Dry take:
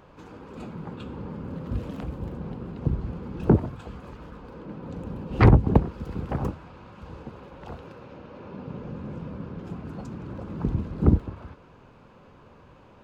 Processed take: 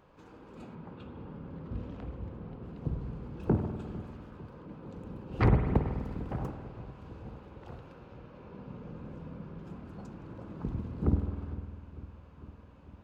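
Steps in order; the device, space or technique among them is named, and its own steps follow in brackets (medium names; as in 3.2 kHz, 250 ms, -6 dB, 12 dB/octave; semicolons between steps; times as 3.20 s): dub delay into a spring reverb (filtered feedback delay 451 ms, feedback 74%, low-pass 1.2 kHz, level -18 dB; spring tank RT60 1.9 s, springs 50 ms, chirp 75 ms, DRR 5.5 dB); 0.75–2.63 s: distance through air 110 m; trim -9 dB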